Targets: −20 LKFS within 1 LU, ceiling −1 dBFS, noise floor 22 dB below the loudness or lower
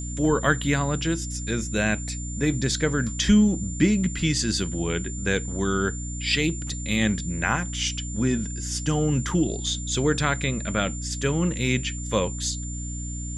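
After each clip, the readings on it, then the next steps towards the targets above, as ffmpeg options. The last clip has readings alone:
mains hum 60 Hz; hum harmonics up to 300 Hz; level of the hum −30 dBFS; interfering tone 7,200 Hz; level of the tone −36 dBFS; integrated loudness −25.0 LKFS; sample peak −7.5 dBFS; target loudness −20.0 LKFS
→ -af "bandreject=frequency=60:width_type=h:width=4,bandreject=frequency=120:width_type=h:width=4,bandreject=frequency=180:width_type=h:width=4,bandreject=frequency=240:width_type=h:width=4,bandreject=frequency=300:width_type=h:width=4"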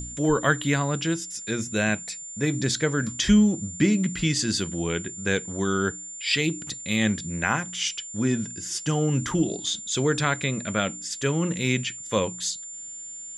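mains hum none found; interfering tone 7,200 Hz; level of the tone −36 dBFS
→ -af "bandreject=frequency=7200:width=30"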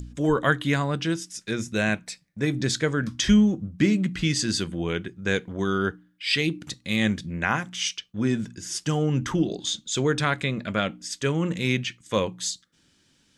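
interfering tone none found; integrated loudness −25.5 LKFS; sample peak −8.0 dBFS; target loudness −20.0 LKFS
→ -af "volume=5.5dB"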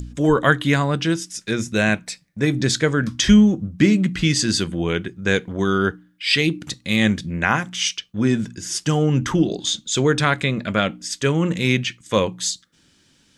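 integrated loudness −20.0 LKFS; sample peak −2.5 dBFS; background noise floor −59 dBFS

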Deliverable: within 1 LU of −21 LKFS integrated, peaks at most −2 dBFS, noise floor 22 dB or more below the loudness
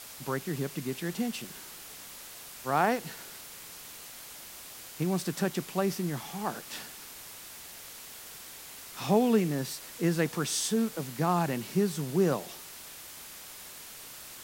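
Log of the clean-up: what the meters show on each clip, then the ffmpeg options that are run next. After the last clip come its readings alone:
background noise floor −47 dBFS; target noise floor −53 dBFS; integrated loudness −30.5 LKFS; sample peak −12.0 dBFS; target loudness −21.0 LKFS
→ -af "afftdn=noise_reduction=6:noise_floor=-47"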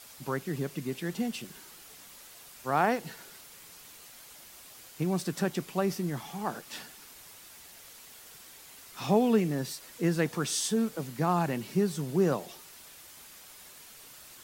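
background noise floor −51 dBFS; target noise floor −53 dBFS
→ -af "afftdn=noise_reduction=6:noise_floor=-51"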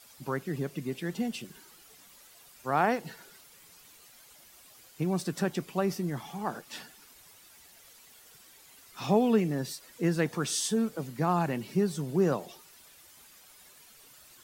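background noise floor −56 dBFS; integrated loudness −30.5 LKFS; sample peak −12.0 dBFS; target loudness −21.0 LKFS
→ -af "volume=9.5dB"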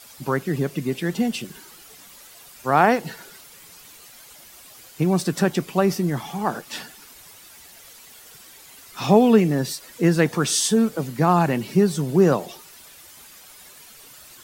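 integrated loudness −21.0 LKFS; sample peak −2.5 dBFS; background noise floor −47 dBFS

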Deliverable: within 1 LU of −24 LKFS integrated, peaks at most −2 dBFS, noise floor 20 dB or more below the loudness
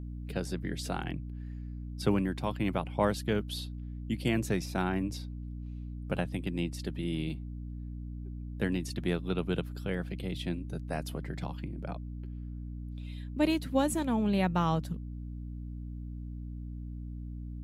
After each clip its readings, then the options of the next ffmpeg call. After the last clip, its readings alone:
mains hum 60 Hz; hum harmonics up to 300 Hz; level of the hum −37 dBFS; integrated loudness −34.5 LKFS; sample peak −13.5 dBFS; target loudness −24.0 LKFS
→ -af "bandreject=frequency=60:width_type=h:width=6,bandreject=frequency=120:width_type=h:width=6,bandreject=frequency=180:width_type=h:width=6,bandreject=frequency=240:width_type=h:width=6,bandreject=frequency=300:width_type=h:width=6"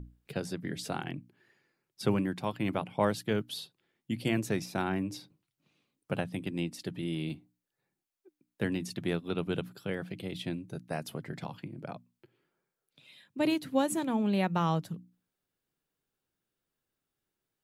mains hum none found; integrated loudness −33.5 LKFS; sample peak −14.0 dBFS; target loudness −24.0 LKFS
→ -af "volume=9.5dB"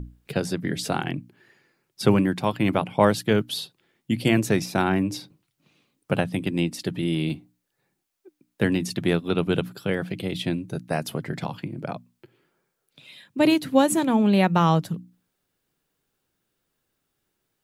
integrated loudness −24.0 LKFS; sample peak −4.5 dBFS; background noise floor −78 dBFS

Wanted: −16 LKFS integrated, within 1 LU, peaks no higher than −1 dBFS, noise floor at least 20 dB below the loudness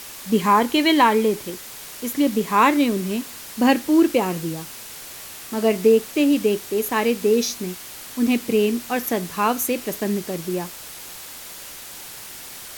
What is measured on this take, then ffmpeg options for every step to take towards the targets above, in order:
background noise floor −38 dBFS; target noise floor −41 dBFS; integrated loudness −20.5 LKFS; sample peak −3.5 dBFS; target loudness −16.0 LKFS
→ -af "afftdn=noise_reduction=6:noise_floor=-38"
-af "volume=4.5dB,alimiter=limit=-1dB:level=0:latency=1"

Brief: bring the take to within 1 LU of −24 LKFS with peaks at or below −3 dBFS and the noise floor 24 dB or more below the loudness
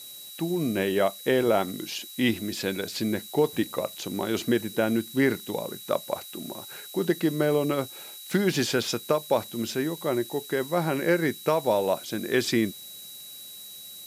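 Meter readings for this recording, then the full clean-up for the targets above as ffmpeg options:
interfering tone 3,900 Hz; level of the tone −44 dBFS; background noise floor −43 dBFS; target noise floor −51 dBFS; integrated loudness −27.0 LKFS; sample peak −10.0 dBFS; target loudness −24.0 LKFS
→ -af "bandreject=frequency=3900:width=30"
-af "afftdn=noise_reduction=8:noise_floor=-43"
-af "volume=3dB"

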